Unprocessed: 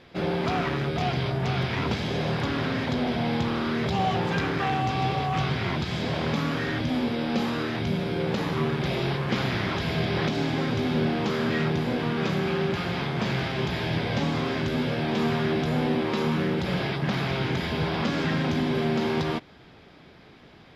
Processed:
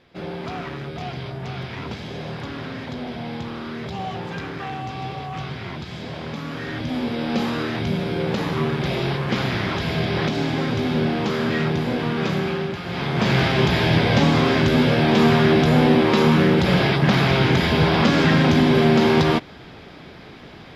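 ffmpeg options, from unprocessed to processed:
-af "volume=6.31,afade=t=in:st=6.42:d=0.96:silence=0.398107,afade=t=out:st=12.38:d=0.44:silence=0.473151,afade=t=in:st=12.82:d=0.59:silence=0.237137"

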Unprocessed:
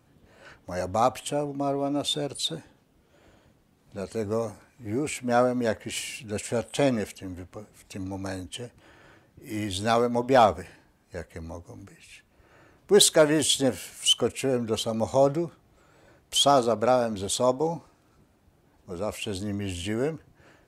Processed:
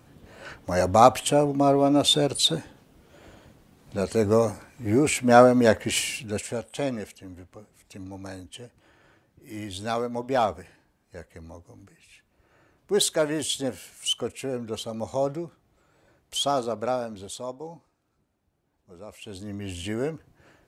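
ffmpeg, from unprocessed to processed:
-af "volume=8.41,afade=t=out:st=5.92:d=0.69:silence=0.237137,afade=t=out:st=16.91:d=0.56:silence=0.446684,afade=t=in:st=19.13:d=0.72:silence=0.281838"

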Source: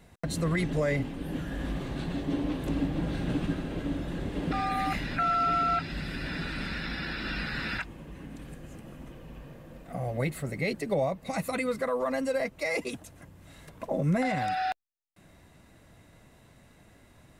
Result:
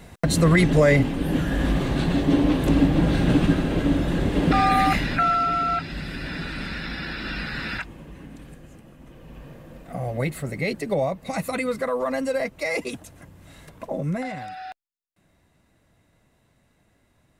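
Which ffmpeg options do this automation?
-af "volume=8.41,afade=t=out:st=4.74:d=0.75:silence=0.398107,afade=t=out:st=7.99:d=0.98:silence=0.473151,afade=t=in:st=8.97:d=0.5:silence=0.421697,afade=t=out:st=13.58:d=0.93:silence=0.281838"

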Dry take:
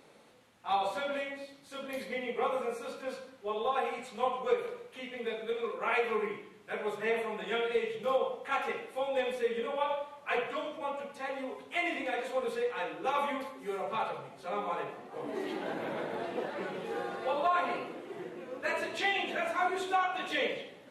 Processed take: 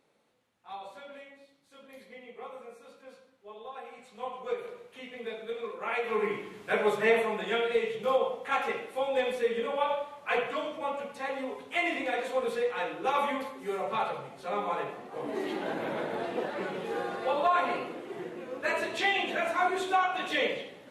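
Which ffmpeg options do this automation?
-af "volume=3.16,afade=t=in:st=3.86:d=0.98:silence=0.316228,afade=t=in:st=6.03:d=0.57:silence=0.251189,afade=t=out:st=6.6:d=0.98:silence=0.446684"

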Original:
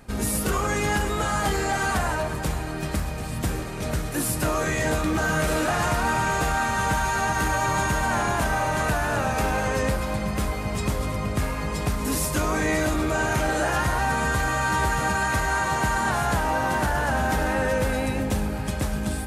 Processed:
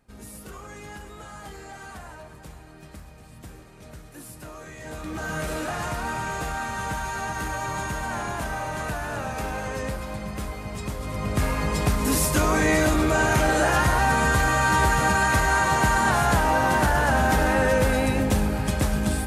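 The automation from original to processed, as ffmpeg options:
-af "volume=1.41,afade=t=in:st=4.79:d=0.58:silence=0.298538,afade=t=in:st=11.01:d=0.51:silence=0.354813"

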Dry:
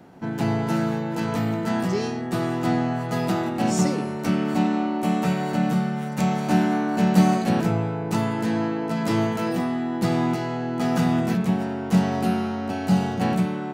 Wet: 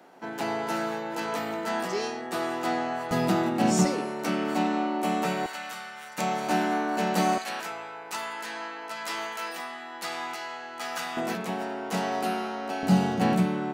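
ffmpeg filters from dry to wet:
-af "asetnsamples=n=441:p=0,asendcmd='3.11 highpass f 150;3.85 highpass f 330;5.46 highpass f 1300;6.18 highpass f 390;7.38 highpass f 1100;11.17 highpass f 430;12.83 highpass f 150',highpass=460"

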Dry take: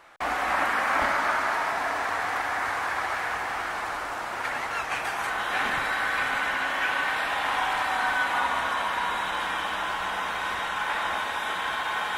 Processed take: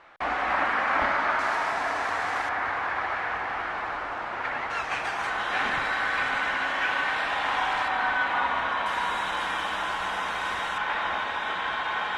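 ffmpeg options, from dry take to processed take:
-af "asetnsamples=n=441:p=0,asendcmd='1.39 lowpass f 7700;2.49 lowpass f 3100;4.7 lowpass f 6000;7.88 lowpass f 3600;8.86 lowpass f 9500;10.78 lowpass f 4200',lowpass=3800"

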